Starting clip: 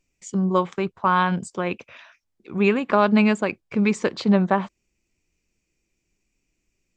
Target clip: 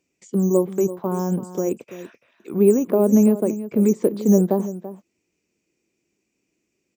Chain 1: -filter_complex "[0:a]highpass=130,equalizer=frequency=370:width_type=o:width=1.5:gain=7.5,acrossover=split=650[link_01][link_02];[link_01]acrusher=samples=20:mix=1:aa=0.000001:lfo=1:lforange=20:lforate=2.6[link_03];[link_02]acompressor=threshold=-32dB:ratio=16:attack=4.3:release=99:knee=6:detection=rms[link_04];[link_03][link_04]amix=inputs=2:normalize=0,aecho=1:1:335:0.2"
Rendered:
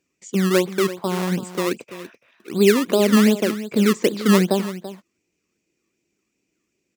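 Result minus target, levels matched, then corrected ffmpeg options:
downward compressor: peak gain reduction −11 dB; sample-and-hold swept by an LFO: distortion +14 dB
-filter_complex "[0:a]highpass=130,equalizer=frequency=370:width_type=o:width=1.5:gain=7.5,acrossover=split=650[link_01][link_02];[link_01]acrusher=samples=5:mix=1:aa=0.000001:lfo=1:lforange=5:lforate=2.6[link_03];[link_02]acompressor=threshold=-43.5dB:ratio=16:attack=4.3:release=99:knee=6:detection=rms[link_04];[link_03][link_04]amix=inputs=2:normalize=0,aecho=1:1:335:0.2"

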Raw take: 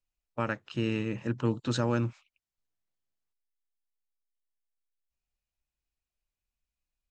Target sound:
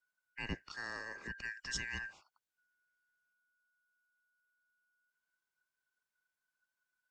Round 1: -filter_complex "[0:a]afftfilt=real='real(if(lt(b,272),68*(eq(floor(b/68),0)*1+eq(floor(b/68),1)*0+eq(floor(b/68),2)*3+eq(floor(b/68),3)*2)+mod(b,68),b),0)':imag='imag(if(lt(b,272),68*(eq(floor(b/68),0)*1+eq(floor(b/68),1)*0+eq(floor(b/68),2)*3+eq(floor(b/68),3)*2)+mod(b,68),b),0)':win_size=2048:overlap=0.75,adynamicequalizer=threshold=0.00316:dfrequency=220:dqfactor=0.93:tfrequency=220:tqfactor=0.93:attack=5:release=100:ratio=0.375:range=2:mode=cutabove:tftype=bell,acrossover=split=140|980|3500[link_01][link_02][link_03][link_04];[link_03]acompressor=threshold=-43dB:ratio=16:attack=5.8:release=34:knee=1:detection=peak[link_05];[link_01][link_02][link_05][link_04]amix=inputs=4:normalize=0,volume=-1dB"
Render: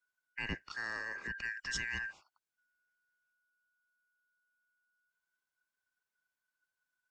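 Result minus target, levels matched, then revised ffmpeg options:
downward compressor: peak gain reduction −11.5 dB
-filter_complex "[0:a]afftfilt=real='real(if(lt(b,272),68*(eq(floor(b/68),0)*1+eq(floor(b/68),1)*0+eq(floor(b/68),2)*3+eq(floor(b/68),3)*2)+mod(b,68),b),0)':imag='imag(if(lt(b,272),68*(eq(floor(b/68),0)*1+eq(floor(b/68),1)*0+eq(floor(b/68),2)*3+eq(floor(b/68),3)*2)+mod(b,68),b),0)':win_size=2048:overlap=0.75,adynamicequalizer=threshold=0.00316:dfrequency=220:dqfactor=0.93:tfrequency=220:tqfactor=0.93:attack=5:release=100:ratio=0.375:range=2:mode=cutabove:tftype=bell,acrossover=split=140|980|3500[link_01][link_02][link_03][link_04];[link_03]acompressor=threshold=-55dB:ratio=16:attack=5.8:release=34:knee=1:detection=peak[link_05];[link_01][link_02][link_05][link_04]amix=inputs=4:normalize=0,volume=-1dB"

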